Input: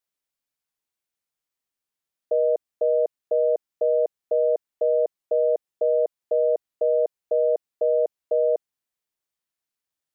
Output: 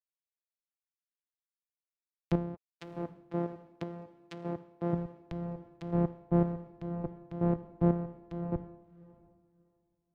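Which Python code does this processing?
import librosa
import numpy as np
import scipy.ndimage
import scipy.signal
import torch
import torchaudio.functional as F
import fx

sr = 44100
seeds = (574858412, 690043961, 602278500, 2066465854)

y = np.r_[np.sort(x[:len(x) // 256 * 256].reshape(-1, 256), axis=1).ravel(), x[len(x) // 256 * 256:]]
y = fx.highpass(y, sr, hz=280.0, slope=6, at=(2.54, 4.93))
y = fx.dereverb_blind(y, sr, rt60_s=0.64)
y = fx.chopper(y, sr, hz=2.7, depth_pct=60, duty_pct=35)
y = fx.env_lowpass_down(y, sr, base_hz=620.0, full_db=-31.5)
y = fx.echo_diffused(y, sr, ms=693, feedback_pct=41, wet_db=-10.0)
y = fx.band_widen(y, sr, depth_pct=100)
y = y * 10.0 ** (-6.5 / 20.0)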